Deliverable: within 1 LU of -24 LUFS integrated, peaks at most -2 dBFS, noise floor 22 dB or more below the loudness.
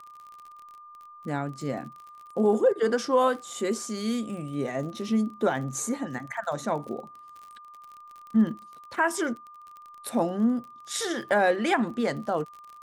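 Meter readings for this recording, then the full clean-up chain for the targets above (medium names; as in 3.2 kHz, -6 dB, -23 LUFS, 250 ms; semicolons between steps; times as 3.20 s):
tick rate 39 per s; steady tone 1.2 kHz; tone level -45 dBFS; loudness -27.5 LUFS; peak level -10.5 dBFS; loudness target -24.0 LUFS
-> de-click; band-stop 1.2 kHz, Q 30; trim +3.5 dB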